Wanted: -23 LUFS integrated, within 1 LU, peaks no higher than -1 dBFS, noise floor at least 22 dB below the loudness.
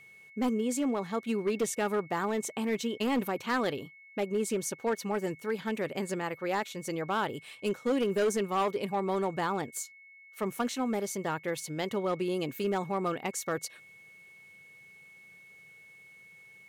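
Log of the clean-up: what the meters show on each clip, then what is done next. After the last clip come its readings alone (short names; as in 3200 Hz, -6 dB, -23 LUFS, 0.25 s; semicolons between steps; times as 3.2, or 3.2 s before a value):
clipped 1.3%; flat tops at -23.0 dBFS; steady tone 2200 Hz; tone level -52 dBFS; loudness -32.0 LUFS; peak -23.0 dBFS; loudness target -23.0 LUFS
-> clip repair -23 dBFS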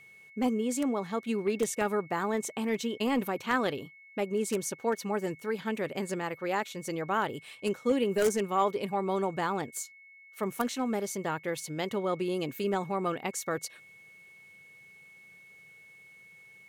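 clipped 0.0%; steady tone 2200 Hz; tone level -52 dBFS
-> notch 2200 Hz, Q 30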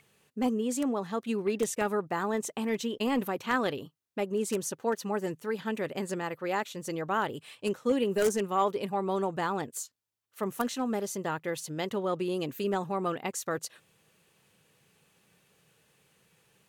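steady tone none; loudness -31.5 LUFS; peak -14.0 dBFS; loudness target -23.0 LUFS
-> gain +8.5 dB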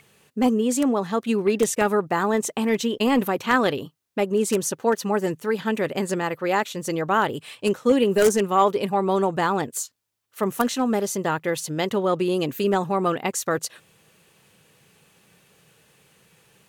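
loudness -23.0 LUFS; peak -5.5 dBFS; noise floor -65 dBFS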